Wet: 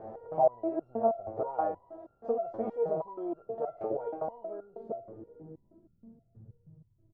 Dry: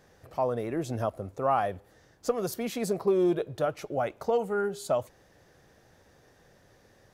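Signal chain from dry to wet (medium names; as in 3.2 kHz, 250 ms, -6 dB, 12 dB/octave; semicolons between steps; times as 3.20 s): spectral levelling over time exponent 0.6; dynamic bell 860 Hz, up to +4 dB, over -33 dBFS, Q 0.98; in parallel at 0 dB: compression, threshold -32 dBFS, peak gain reduction 15 dB; on the sum: low-pass sweep 700 Hz -> 120 Hz, 4.21–6.61 s; on a send: feedback delay 375 ms, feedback 36%, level -21 dB; on the sum: resonator arpeggio 6.3 Hz 110–1400 Hz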